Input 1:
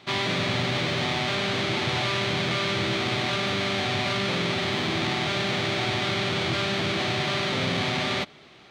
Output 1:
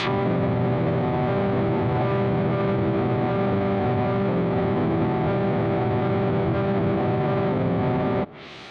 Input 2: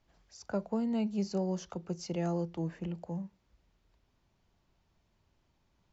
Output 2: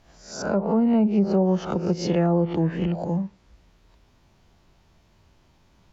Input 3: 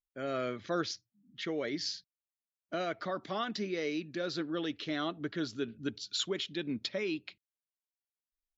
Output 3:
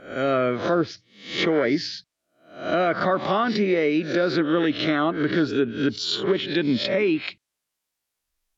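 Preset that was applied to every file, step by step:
reverse spectral sustain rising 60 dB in 0.48 s; low-pass that closes with the level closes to 800 Hz, closed at -26 dBFS; peak limiter -24.5 dBFS; normalise loudness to -23 LUFS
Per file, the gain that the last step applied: +9.5 dB, +12.5 dB, +13.5 dB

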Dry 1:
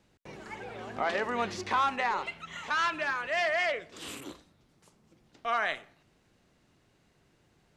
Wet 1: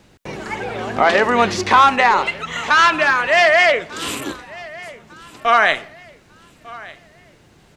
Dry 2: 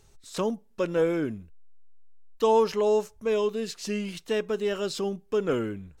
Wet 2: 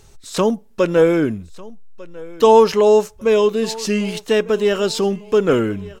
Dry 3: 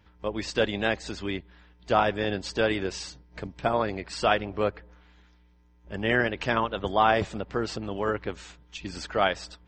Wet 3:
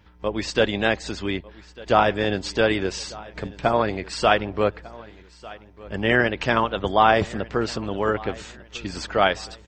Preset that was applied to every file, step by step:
feedback delay 1198 ms, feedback 35%, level -21 dB; peak normalisation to -1.5 dBFS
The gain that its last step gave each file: +16.0 dB, +11.0 dB, +5.0 dB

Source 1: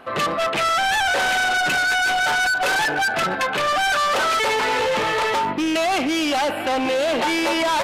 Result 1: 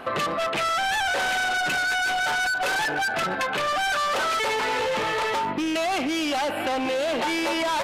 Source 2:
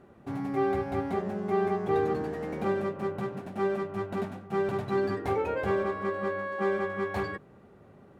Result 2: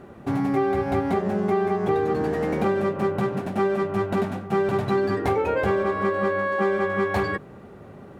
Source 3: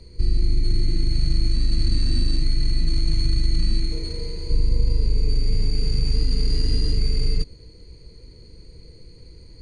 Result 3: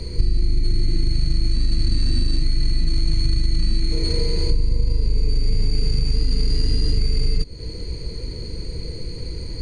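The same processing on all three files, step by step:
compression 6:1, threshold -30 dBFS; normalise loudness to -24 LUFS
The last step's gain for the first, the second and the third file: +5.0 dB, +11.0 dB, +15.0 dB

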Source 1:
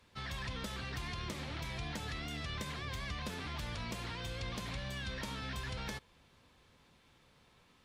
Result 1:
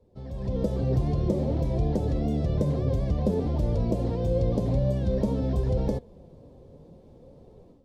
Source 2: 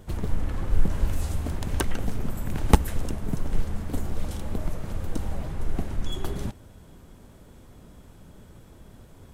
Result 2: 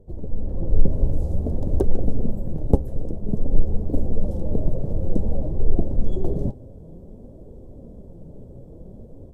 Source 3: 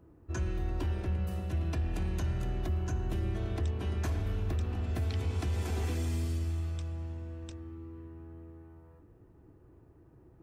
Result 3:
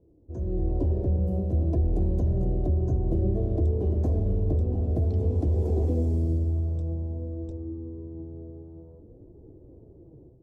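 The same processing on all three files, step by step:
flange 0.53 Hz, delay 2.1 ms, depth 5.8 ms, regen +67%; level rider gain up to 11.5 dB; FFT filter 310 Hz 0 dB, 540 Hz +4 dB, 1.4 kHz -28 dB, 2.6 kHz -30 dB, 4.9 kHz -23 dB; normalise loudness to -27 LUFS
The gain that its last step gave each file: +11.0 dB, +0.5 dB, +1.5 dB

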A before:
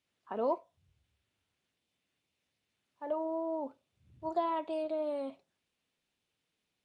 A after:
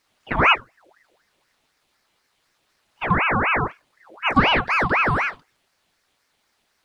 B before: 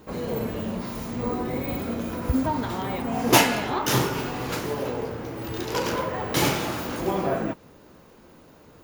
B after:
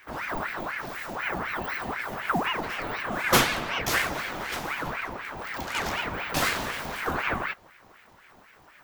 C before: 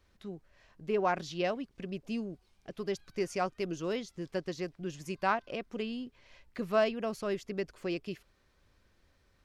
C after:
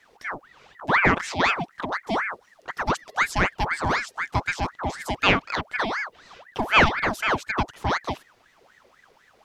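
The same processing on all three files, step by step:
ring modulator with a swept carrier 1.2 kHz, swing 65%, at 4 Hz; peak normalisation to -3 dBFS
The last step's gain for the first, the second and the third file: +18.0 dB, -0.5 dB, +13.0 dB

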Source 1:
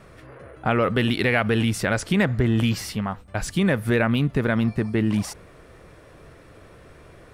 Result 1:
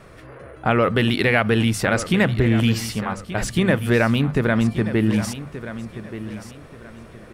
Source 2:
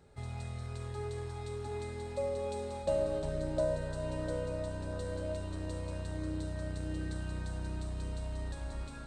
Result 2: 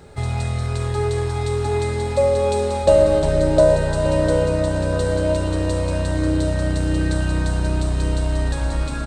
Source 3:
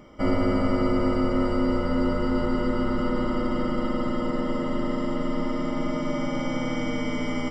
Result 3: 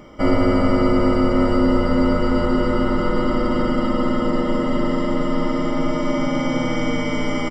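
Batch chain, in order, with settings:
hum notches 50/100/150/200/250 Hz; feedback delay 1179 ms, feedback 29%, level -13 dB; normalise loudness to -20 LUFS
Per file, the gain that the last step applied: +3.0 dB, +18.0 dB, +6.5 dB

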